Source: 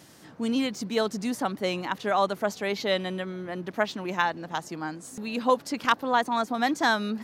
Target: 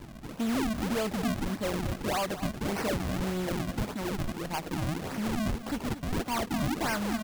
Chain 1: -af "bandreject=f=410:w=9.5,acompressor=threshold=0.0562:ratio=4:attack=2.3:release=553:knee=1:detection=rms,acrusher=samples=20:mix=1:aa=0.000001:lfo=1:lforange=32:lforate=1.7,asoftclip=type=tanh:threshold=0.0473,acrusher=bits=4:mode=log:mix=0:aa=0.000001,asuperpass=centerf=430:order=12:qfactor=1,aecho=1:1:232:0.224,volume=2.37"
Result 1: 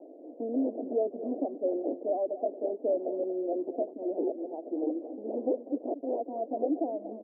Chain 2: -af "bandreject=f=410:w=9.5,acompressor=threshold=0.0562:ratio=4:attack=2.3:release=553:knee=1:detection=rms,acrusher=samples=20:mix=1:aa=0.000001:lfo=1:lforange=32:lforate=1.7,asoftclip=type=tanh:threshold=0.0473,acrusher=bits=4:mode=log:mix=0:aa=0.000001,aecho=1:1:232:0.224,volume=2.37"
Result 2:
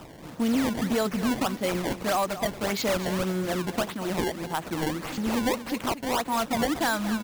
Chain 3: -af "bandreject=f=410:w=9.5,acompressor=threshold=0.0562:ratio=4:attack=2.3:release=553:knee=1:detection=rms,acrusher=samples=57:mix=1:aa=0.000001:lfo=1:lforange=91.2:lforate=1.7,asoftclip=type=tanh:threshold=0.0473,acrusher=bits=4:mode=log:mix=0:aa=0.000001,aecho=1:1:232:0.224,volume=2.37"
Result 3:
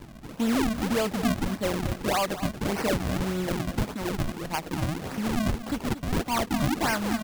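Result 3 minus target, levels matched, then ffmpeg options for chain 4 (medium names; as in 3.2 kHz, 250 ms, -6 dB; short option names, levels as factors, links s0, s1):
saturation: distortion -7 dB
-af "bandreject=f=410:w=9.5,acompressor=threshold=0.0562:ratio=4:attack=2.3:release=553:knee=1:detection=rms,acrusher=samples=57:mix=1:aa=0.000001:lfo=1:lforange=91.2:lforate=1.7,asoftclip=type=tanh:threshold=0.0188,acrusher=bits=4:mode=log:mix=0:aa=0.000001,aecho=1:1:232:0.224,volume=2.37"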